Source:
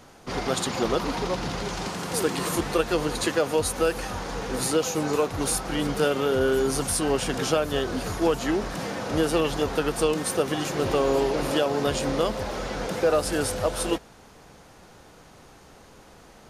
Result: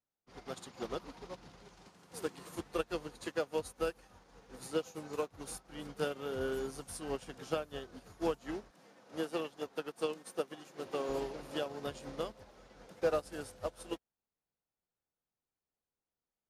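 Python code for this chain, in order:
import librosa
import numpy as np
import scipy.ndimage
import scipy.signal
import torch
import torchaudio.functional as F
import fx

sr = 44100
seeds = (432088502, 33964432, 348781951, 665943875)

y = fx.highpass(x, sr, hz=190.0, slope=12, at=(8.71, 11.09))
y = fx.upward_expand(y, sr, threshold_db=-44.0, expansion=2.5)
y = y * librosa.db_to_amplitude(-8.0)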